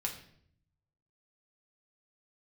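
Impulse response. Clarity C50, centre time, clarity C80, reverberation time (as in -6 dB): 8.5 dB, 19 ms, 12.0 dB, 0.65 s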